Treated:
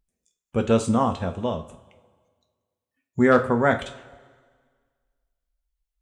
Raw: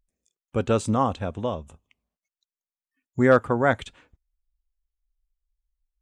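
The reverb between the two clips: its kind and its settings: two-slope reverb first 0.32 s, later 1.7 s, from -19 dB, DRR 4.5 dB

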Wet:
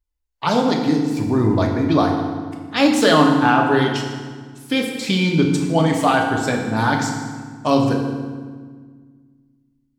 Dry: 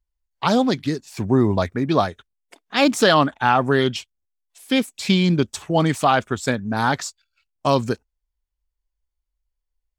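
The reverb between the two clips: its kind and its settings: FDN reverb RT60 1.6 s, low-frequency decay 1.55×, high-frequency decay 0.75×, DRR 0.5 dB; gain -1.5 dB

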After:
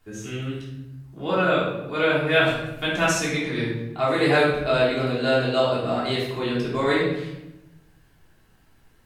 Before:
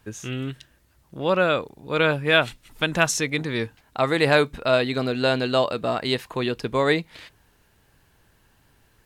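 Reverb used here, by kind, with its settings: shoebox room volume 340 m³, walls mixed, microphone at 3.3 m; gain -9.5 dB

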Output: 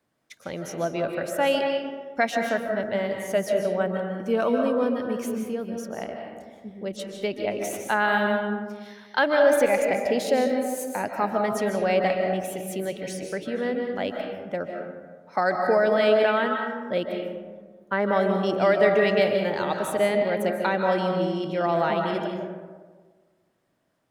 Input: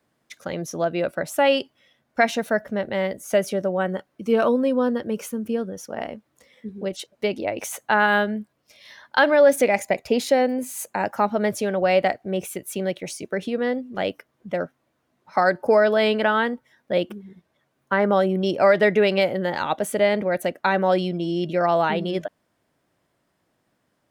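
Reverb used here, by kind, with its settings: digital reverb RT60 1.5 s, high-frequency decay 0.4×, pre-delay 0.11 s, DRR 2.5 dB; gain -4.5 dB

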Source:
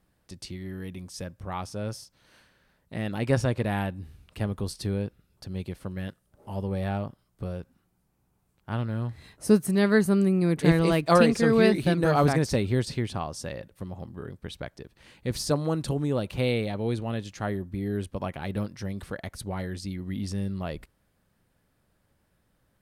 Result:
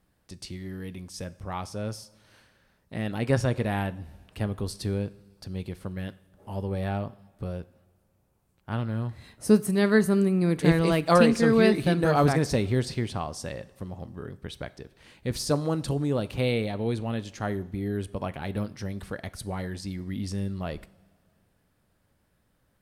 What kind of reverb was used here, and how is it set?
two-slope reverb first 0.61 s, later 2.6 s, from -16 dB, DRR 15 dB

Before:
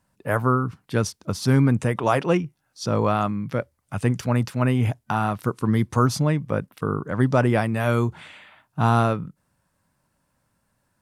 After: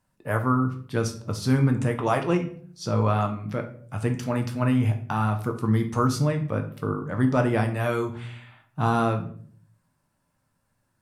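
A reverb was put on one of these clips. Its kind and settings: shoebox room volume 58 m³, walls mixed, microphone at 0.41 m; gain -4.5 dB

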